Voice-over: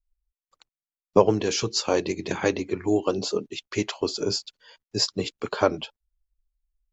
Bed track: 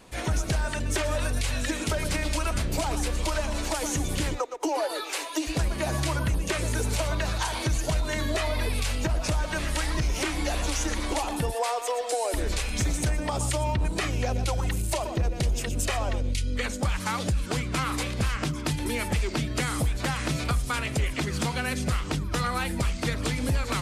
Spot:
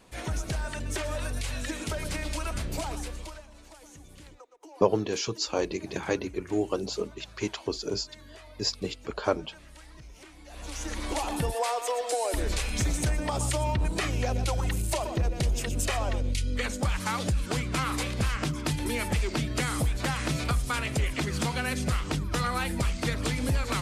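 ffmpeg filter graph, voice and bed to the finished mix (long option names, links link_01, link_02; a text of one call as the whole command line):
ffmpeg -i stem1.wav -i stem2.wav -filter_complex "[0:a]adelay=3650,volume=-5dB[link_01];[1:a]volume=16dB,afade=type=out:start_time=2.82:duration=0.63:silence=0.141254,afade=type=in:start_time=10.47:duration=0.85:silence=0.0891251[link_02];[link_01][link_02]amix=inputs=2:normalize=0" out.wav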